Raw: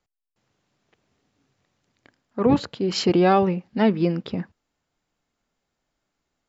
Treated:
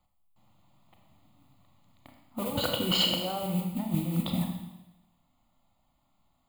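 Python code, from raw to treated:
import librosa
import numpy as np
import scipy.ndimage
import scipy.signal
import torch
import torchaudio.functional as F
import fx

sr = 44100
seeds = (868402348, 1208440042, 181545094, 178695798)

y = fx.peak_eq(x, sr, hz=2500.0, db=-10.0, octaves=0.97)
y = fx.over_compress(y, sr, threshold_db=-30.0, ratio=-1.0)
y = fx.small_body(y, sr, hz=(480.0, 1500.0, 2900.0), ring_ms=30, db=18, at=(2.39, 3.46))
y = fx.mod_noise(y, sr, seeds[0], snr_db=17)
y = fx.fixed_phaser(y, sr, hz=1600.0, stages=6)
y = fx.rev_schroeder(y, sr, rt60_s=0.99, comb_ms=28, drr_db=2.5)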